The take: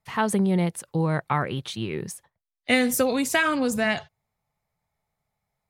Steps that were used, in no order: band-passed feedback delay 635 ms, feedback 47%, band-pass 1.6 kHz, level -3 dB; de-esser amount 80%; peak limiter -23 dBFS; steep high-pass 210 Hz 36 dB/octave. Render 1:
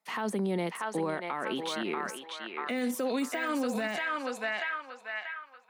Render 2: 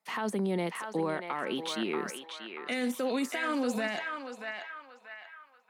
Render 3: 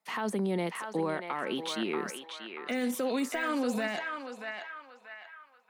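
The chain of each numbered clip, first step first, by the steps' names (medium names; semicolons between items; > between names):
band-passed feedback delay > de-esser > steep high-pass > peak limiter; steep high-pass > peak limiter > de-esser > band-passed feedback delay; steep high-pass > de-esser > peak limiter > band-passed feedback delay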